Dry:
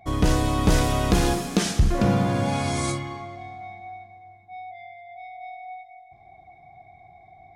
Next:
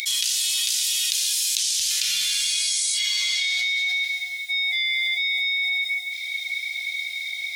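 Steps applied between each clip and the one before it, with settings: inverse Chebyshev high-pass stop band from 970 Hz, stop band 60 dB; fast leveller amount 100%; gain +5.5 dB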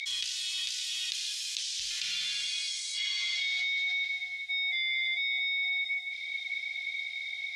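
Bessel low-pass 3800 Hz, order 2; gain -5.5 dB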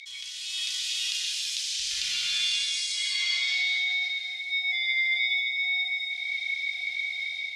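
AGC gain up to 10 dB; reverb RT60 0.85 s, pre-delay 0.116 s, DRR 0 dB; gain -8 dB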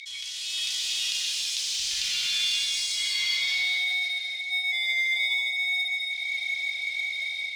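bell 710 Hz -4.5 dB 2.5 oct; in parallel at -4 dB: soft clip -35.5 dBFS, distortion -7 dB

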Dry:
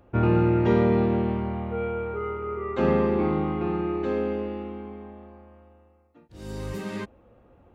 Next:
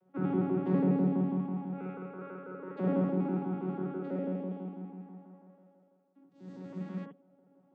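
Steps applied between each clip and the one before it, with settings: arpeggiated vocoder bare fifth, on F#3, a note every 82 ms; on a send at -2 dB: reverb, pre-delay 48 ms; on the sum: gain -9 dB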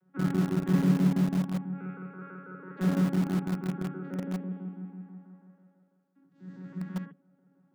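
fifteen-band EQ 160 Hz +11 dB, 630 Hz -6 dB, 1600 Hz +11 dB; in parallel at -11 dB: bit-crush 4-bit; on the sum: gain -4.5 dB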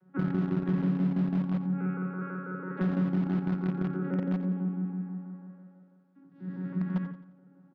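compressor 6:1, threshold -33 dBFS, peak gain reduction 14 dB; air absorption 290 m; on a send: feedback echo 88 ms, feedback 41%, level -12.5 dB; on the sum: gain +7 dB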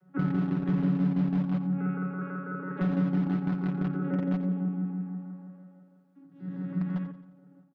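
comb 6.9 ms, depth 61%; ending taper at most 130 dB/s

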